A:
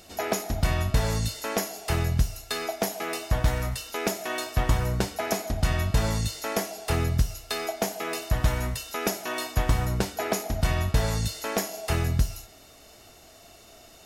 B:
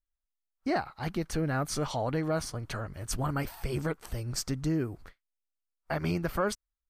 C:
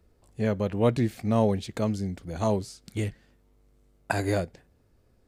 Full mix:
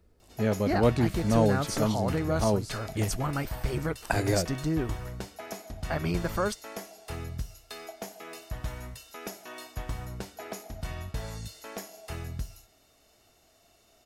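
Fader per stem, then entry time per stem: -12.0, +0.5, -0.5 dB; 0.20, 0.00, 0.00 s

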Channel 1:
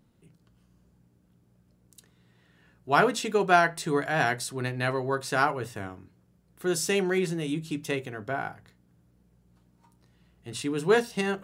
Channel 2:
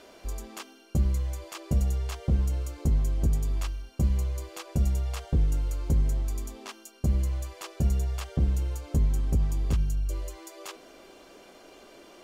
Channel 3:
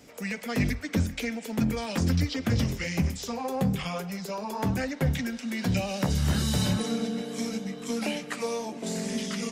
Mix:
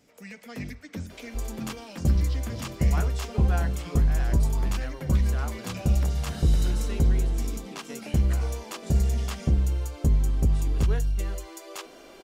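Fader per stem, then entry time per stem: -15.0, +2.5, -10.0 dB; 0.00, 1.10, 0.00 s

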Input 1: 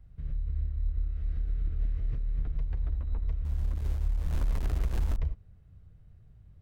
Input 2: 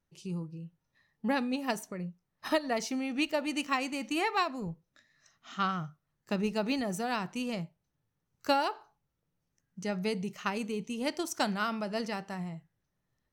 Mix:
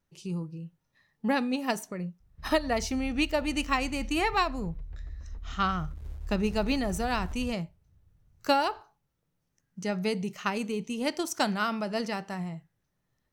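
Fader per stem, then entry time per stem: -9.5, +3.0 dB; 2.20, 0.00 s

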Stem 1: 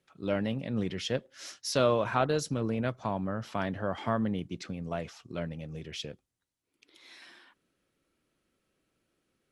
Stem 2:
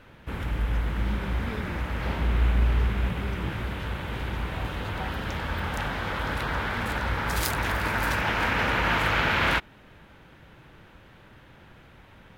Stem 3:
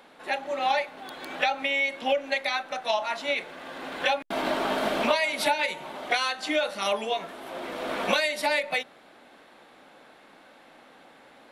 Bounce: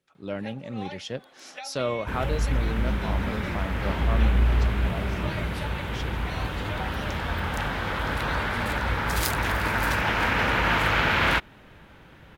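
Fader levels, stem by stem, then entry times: -2.5, +1.5, -15.0 dB; 0.00, 1.80, 0.15 s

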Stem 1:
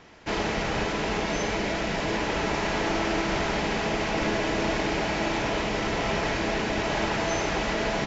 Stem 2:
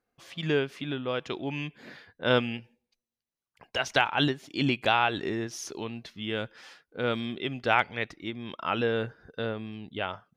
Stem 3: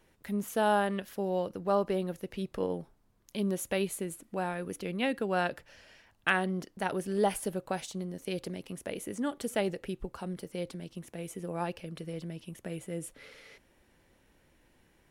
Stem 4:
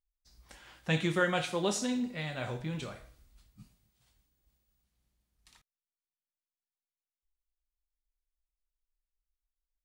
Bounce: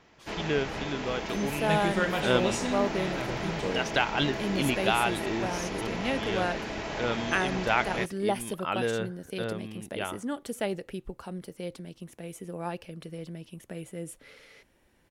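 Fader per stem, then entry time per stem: -8.0, -2.0, -0.5, 0.0 dB; 0.00, 0.00, 1.05, 0.80 s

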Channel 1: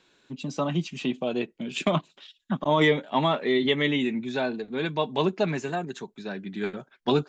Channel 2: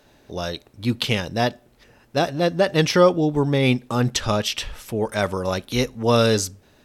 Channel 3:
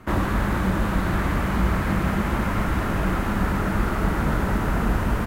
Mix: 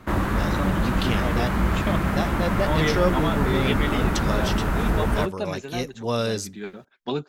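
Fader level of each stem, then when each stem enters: -4.5, -7.5, -0.5 dB; 0.00, 0.00, 0.00 s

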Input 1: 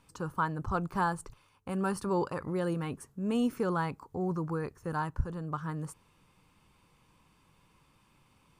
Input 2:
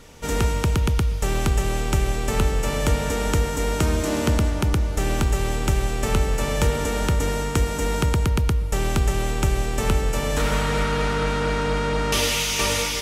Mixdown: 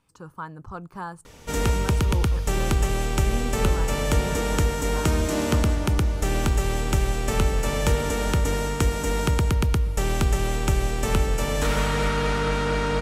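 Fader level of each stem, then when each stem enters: -5.0, -1.0 dB; 0.00, 1.25 s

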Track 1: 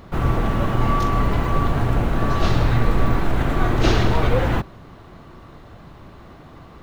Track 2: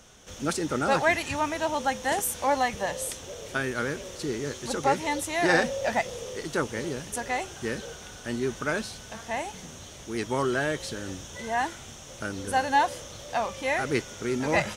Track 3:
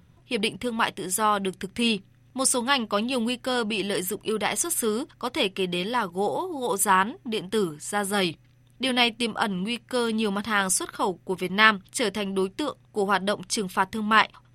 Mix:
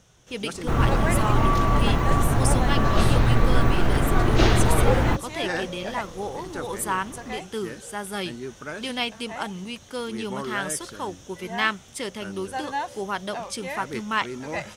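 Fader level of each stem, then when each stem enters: -1.0, -6.5, -6.0 dB; 0.55, 0.00, 0.00 s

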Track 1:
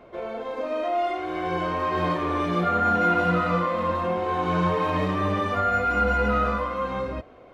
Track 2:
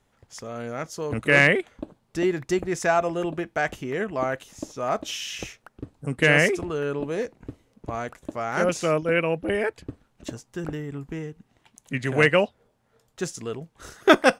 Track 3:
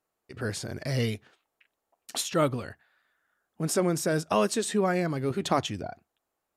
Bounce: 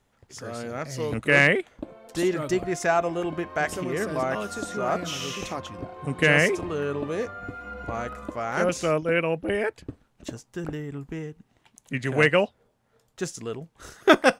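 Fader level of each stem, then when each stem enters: -16.0, -1.0, -8.5 dB; 1.70, 0.00, 0.00 s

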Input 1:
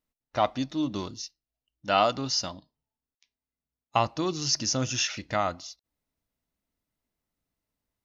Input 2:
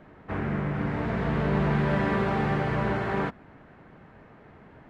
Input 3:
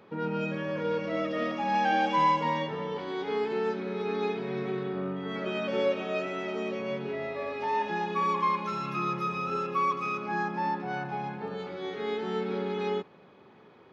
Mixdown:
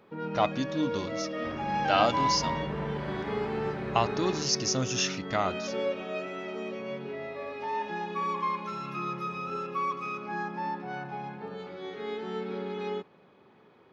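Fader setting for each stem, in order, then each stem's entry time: -1.5, -11.0, -3.5 dB; 0.00, 1.15, 0.00 s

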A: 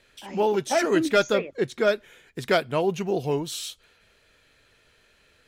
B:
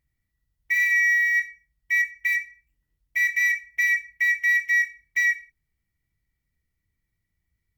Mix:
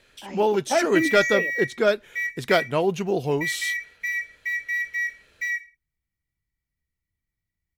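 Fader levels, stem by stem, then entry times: +1.5, -6.0 dB; 0.00, 0.25 s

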